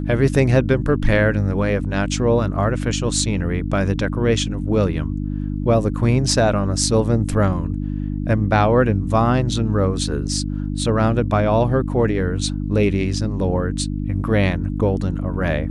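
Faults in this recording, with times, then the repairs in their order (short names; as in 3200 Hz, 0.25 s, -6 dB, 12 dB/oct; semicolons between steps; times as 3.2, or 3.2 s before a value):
hum 50 Hz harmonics 6 -24 dBFS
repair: de-hum 50 Hz, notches 6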